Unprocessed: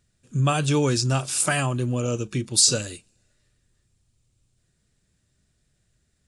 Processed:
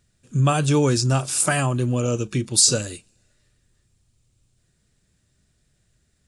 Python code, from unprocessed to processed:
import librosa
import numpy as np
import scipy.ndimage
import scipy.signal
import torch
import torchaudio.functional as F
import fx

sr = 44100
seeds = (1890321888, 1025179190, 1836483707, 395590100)

y = fx.dynamic_eq(x, sr, hz=3100.0, q=0.8, threshold_db=-37.0, ratio=4.0, max_db=-4)
y = y * 10.0 ** (3.0 / 20.0)